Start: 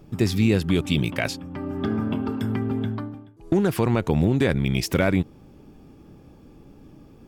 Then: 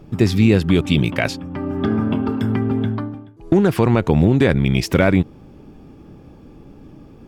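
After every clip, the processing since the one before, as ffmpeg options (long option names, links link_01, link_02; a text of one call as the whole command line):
ffmpeg -i in.wav -af "highshelf=frequency=5900:gain=-8.5,volume=6dB" out.wav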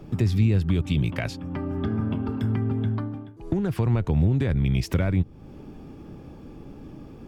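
ffmpeg -i in.wav -filter_complex "[0:a]acrossover=split=130[link_01][link_02];[link_02]acompressor=threshold=-31dB:ratio=3[link_03];[link_01][link_03]amix=inputs=2:normalize=0" out.wav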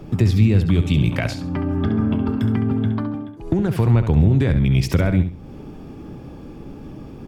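ffmpeg -i in.wav -af "aecho=1:1:68|136|204:0.335|0.0904|0.0244,volume=5.5dB" out.wav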